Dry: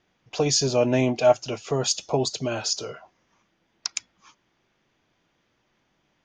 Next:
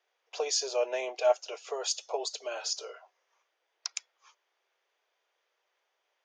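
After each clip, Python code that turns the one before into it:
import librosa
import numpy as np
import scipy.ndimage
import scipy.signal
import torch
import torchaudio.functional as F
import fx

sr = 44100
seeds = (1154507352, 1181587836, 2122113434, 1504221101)

y = scipy.signal.sosfilt(scipy.signal.butter(8, 420.0, 'highpass', fs=sr, output='sos'), x)
y = F.gain(torch.from_numpy(y), -7.0).numpy()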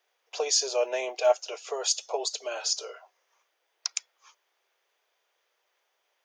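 y = fx.high_shelf(x, sr, hz=8000.0, db=9.0)
y = F.gain(torch.from_numpy(y), 2.5).numpy()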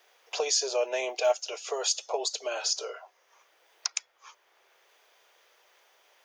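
y = fx.band_squash(x, sr, depth_pct=40)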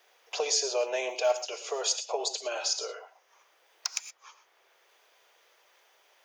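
y = np.clip(x, -10.0 ** (-14.0 / 20.0), 10.0 ** (-14.0 / 20.0))
y = fx.rev_gated(y, sr, seeds[0], gate_ms=140, shape='rising', drr_db=10.0)
y = F.gain(torch.from_numpy(y), -1.0).numpy()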